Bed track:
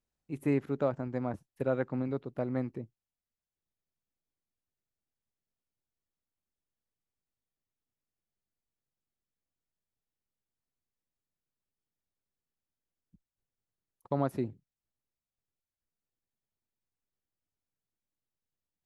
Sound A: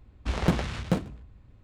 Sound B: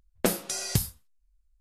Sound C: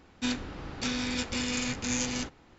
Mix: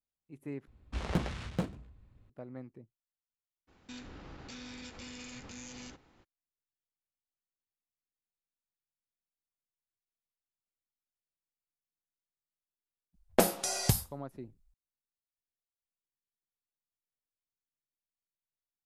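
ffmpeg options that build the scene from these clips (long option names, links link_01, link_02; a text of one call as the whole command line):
ffmpeg -i bed.wav -i cue0.wav -i cue1.wav -i cue2.wav -filter_complex "[0:a]volume=-12.5dB[link_01];[3:a]acompressor=threshold=-34dB:ratio=4:attack=0.38:release=148:knee=1:detection=peak[link_02];[2:a]equalizer=frequency=750:width_type=o:width=0.88:gain=8[link_03];[link_01]asplit=2[link_04][link_05];[link_04]atrim=end=0.674[link_06];[1:a]atrim=end=1.63,asetpts=PTS-STARTPTS,volume=-7.5dB[link_07];[link_05]atrim=start=2.296[link_08];[link_02]atrim=end=2.58,asetpts=PTS-STARTPTS,volume=-7.5dB,afade=type=in:duration=0.02,afade=type=out:start_time=2.56:duration=0.02,adelay=3670[link_09];[link_03]atrim=end=1.6,asetpts=PTS-STARTPTS,volume=-2dB,afade=type=in:duration=0.004:curve=hsin,afade=type=out:start_time=1.596:duration=0.004:curve=hsin,adelay=13140[link_10];[link_06][link_07]acrossfade=duration=0.004:curve1=hsin:curve2=hsin[link_11];[link_11][link_08]acrossfade=duration=0.004:curve1=hsin:curve2=hsin[link_12];[link_12][link_09][link_10]amix=inputs=3:normalize=0" out.wav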